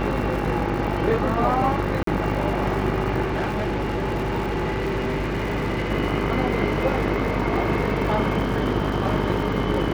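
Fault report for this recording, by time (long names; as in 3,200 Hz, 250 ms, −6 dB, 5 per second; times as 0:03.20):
mains buzz 50 Hz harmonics 31 −27 dBFS
surface crackle 170 per second −31 dBFS
0:02.03–0:02.07: drop-out 43 ms
0:03.26–0:05.92: clipping −21 dBFS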